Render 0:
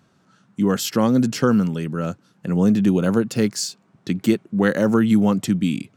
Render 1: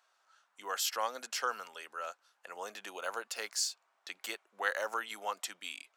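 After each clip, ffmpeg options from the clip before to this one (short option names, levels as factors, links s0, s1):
-af "highpass=f=700:w=0.5412,highpass=f=700:w=1.3066,volume=0.447"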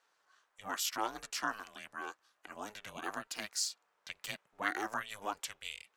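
-af "aeval=exprs='val(0)*sin(2*PI*210*n/s)':c=same,volume=1.12"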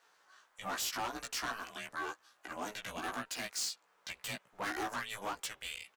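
-filter_complex "[0:a]asplit=2[s0][s1];[s1]acompressor=threshold=0.00562:ratio=6,volume=0.794[s2];[s0][s2]amix=inputs=2:normalize=0,volume=50.1,asoftclip=hard,volume=0.02,asplit=2[s3][s4];[s4]adelay=16,volume=0.708[s5];[s3][s5]amix=inputs=2:normalize=0"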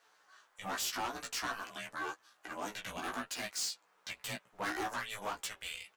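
-af "flanger=delay=8.9:depth=2.6:regen=-32:speed=0.47:shape=triangular,volume=1.58"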